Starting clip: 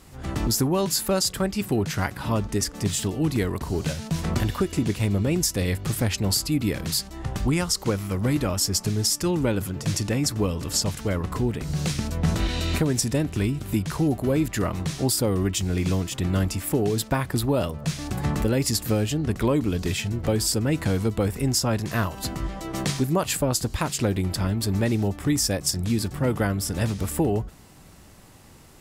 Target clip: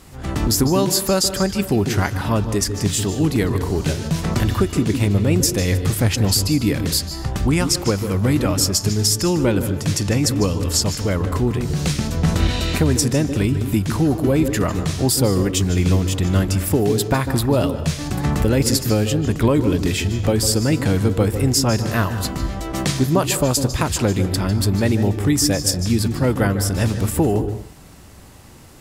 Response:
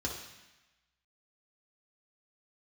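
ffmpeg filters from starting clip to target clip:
-filter_complex "[0:a]asplit=2[s0][s1];[1:a]atrim=start_sample=2205,afade=t=out:st=0.21:d=0.01,atrim=end_sample=9702,adelay=148[s2];[s1][s2]afir=irnorm=-1:irlink=0,volume=0.188[s3];[s0][s3]amix=inputs=2:normalize=0,volume=1.78"

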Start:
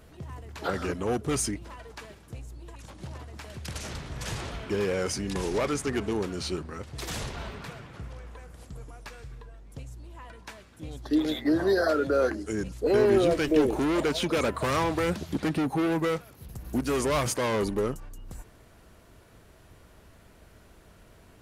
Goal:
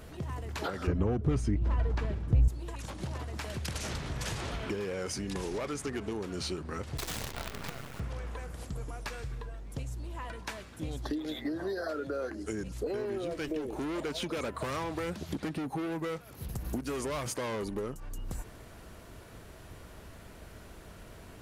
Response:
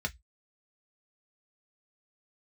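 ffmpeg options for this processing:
-filter_complex "[0:a]asettb=1/sr,asplit=3[s0][s1][s2];[s0]atrim=end=6.974[s3];[s1]atrim=start=6.97:end=8,asetpts=PTS-STARTPTS,afade=t=in:d=0.004:c=qsin,afade=t=out:st=1.026:d=0.004:c=qsin,acrusher=bits=6:dc=4:mix=0:aa=0.000001[s4];[s2]atrim=start=7.996[s5];[s3][s4]acrossfade=d=0.004:c1=hsin:c2=qsin[s6];[s6][s5]acrossfade=d=0.004:c1=qsin:c2=hsin,acompressor=threshold=0.0141:ratio=12,asettb=1/sr,asplit=3[s7][s8][s9];[s7]atrim=end=0.874[s10];[s8]atrim=start=0.87:end=2.48,asetpts=PTS-STARTPTS,afade=t=in:d=0.004:c=qsin,afade=t=out:st=1.606:d=0.004:c=qsin,aemphasis=mode=reproduction:type=riaa[s11];[s9]atrim=start=2.476[s12];[s10][s11]acrossfade=d=0.004:c1=hsin:c2=qsin[s13];[s13][s12]acrossfade=d=0.004:c1=qsin:c2=hsin,volume=1.78"

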